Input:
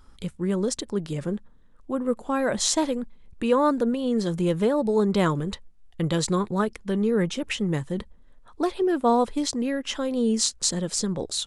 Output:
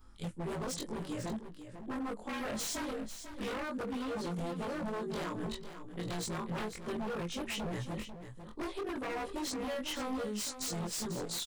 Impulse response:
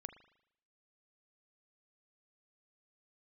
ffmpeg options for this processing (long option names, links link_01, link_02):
-filter_complex "[0:a]afftfilt=real='re':imag='-im':win_size=2048:overlap=0.75,acompressor=threshold=-28dB:ratio=16,flanger=delay=2.4:depth=2.9:regen=-75:speed=0.97:shape=sinusoidal,aeval=exprs='0.0168*(abs(mod(val(0)/0.0168+3,4)-2)-1)':channel_layout=same,asplit=2[link_01][link_02];[link_02]aecho=0:1:495:0.299[link_03];[link_01][link_03]amix=inputs=2:normalize=0,volume=3dB"